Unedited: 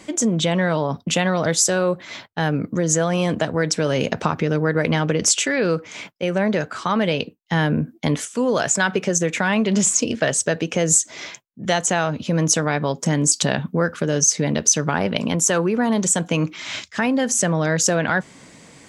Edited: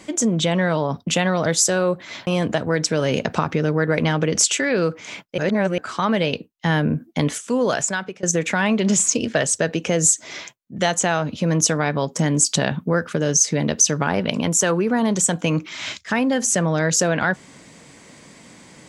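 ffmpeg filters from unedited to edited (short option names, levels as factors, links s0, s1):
-filter_complex "[0:a]asplit=5[s0][s1][s2][s3][s4];[s0]atrim=end=2.272[s5];[s1]atrim=start=3.138:end=6.252[s6];[s2]atrim=start=6.248:end=6.652,asetpts=PTS-STARTPTS,areverse[s7];[s3]atrim=start=6.648:end=9.1,asetpts=PTS-STARTPTS,afade=t=out:st=1.912:d=0.54:silence=0.0707946[s8];[s4]atrim=start=9.1,asetpts=PTS-STARTPTS,afade=t=in:d=0.004:c=hsin:silence=0.0707946[s9];[s5][s6]acrossfade=d=0.004:c1=hsin:c2=hsin[s10];[s10][s7]acrossfade=d=0.004:c1=hsin:c2=hsin[s11];[s8][s9]concat=n=2:v=0:a=1[s12];[s11][s12]acrossfade=d=0.004:c1=hsin:c2=hsin"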